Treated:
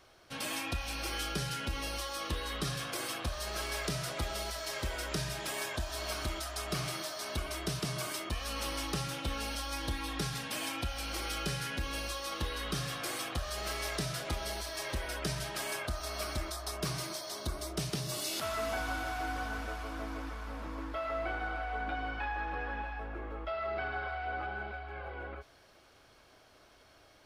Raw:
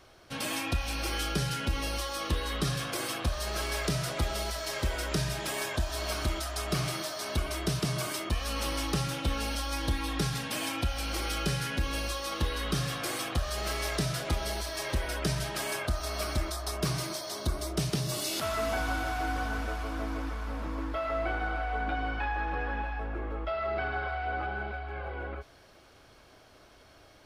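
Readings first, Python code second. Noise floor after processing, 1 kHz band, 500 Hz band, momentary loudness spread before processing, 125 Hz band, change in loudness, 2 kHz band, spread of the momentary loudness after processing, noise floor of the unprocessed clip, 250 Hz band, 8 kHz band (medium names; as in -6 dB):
-61 dBFS, -3.5 dB, -4.5 dB, 4 LU, -6.5 dB, -4.5 dB, -3.0 dB, 5 LU, -57 dBFS, -6.0 dB, -3.0 dB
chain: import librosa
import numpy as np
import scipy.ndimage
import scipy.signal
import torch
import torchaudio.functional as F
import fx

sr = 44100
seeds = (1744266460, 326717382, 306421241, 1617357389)

y = fx.low_shelf(x, sr, hz=420.0, db=-4.0)
y = y * librosa.db_to_amplitude(-3.0)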